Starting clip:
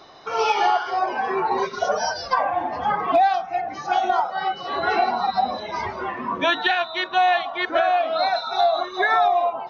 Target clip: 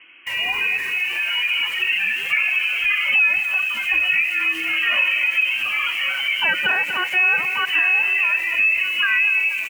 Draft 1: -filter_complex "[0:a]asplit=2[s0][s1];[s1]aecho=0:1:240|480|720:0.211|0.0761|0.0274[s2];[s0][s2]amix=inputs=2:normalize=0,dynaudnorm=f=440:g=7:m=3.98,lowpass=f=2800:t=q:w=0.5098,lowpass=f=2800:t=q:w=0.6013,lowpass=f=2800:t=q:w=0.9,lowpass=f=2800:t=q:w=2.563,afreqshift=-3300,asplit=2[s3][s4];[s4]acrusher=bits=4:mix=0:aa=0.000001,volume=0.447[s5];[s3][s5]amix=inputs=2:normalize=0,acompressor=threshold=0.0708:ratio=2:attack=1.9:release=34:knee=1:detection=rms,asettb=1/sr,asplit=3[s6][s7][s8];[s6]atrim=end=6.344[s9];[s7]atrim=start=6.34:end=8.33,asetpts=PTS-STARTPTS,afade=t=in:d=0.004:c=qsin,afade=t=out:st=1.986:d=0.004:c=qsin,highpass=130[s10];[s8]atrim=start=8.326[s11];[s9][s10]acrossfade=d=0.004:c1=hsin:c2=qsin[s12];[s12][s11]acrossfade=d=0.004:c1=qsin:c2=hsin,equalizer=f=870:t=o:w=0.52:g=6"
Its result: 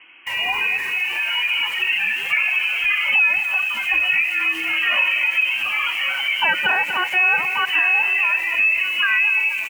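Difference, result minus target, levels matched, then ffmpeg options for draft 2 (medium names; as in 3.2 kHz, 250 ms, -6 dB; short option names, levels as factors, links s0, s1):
1 kHz band +4.0 dB
-filter_complex "[0:a]asplit=2[s0][s1];[s1]aecho=0:1:240|480|720:0.211|0.0761|0.0274[s2];[s0][s2]amix=inputs=2:normalize=0,dynaudnorm=f=440:g=7:m=3.98,lowpass=f=2800:t=q:w=0.5098,lowpass=f=2800:t=q:w=0.6013,lowpass=f=2800:t=q:w=0.9,lowpass=f=2800:t=q:w=2.563,afreqshift=-3300,asplit=2[s3][s4];[s4]acrusher=bits=4:mix=0:aa=0.000001,volume=0.447[s5];[s3][s5]amix=inputs=2:normalize=0,acompressor=threshold=0.0708:ratio=2:attack=1.9:release=34:knee=1:detection=rms,asettb=1/sr,asplit=3[s6][s7][s8];[s6]atrim=end=6.344[s9];[s7]atrim=start=6.34:end=8.33,asetpts=PTS-STARTPTS,afade=t=in:d=0.004:c=qsin,afade=t=out:st=1.986:d=0.004:c=qsin,highpass=130[s10];[s8]atrim=start=8.326[s11];[s9][s10]acrossfade=d=0.004:c1=hsin:c2=qsin[s12];[s12][s11]acrossfade=d=0.004:c1=qsin:c2=hsin,equalizer=f=870:t=o:w=0.52:g=-2"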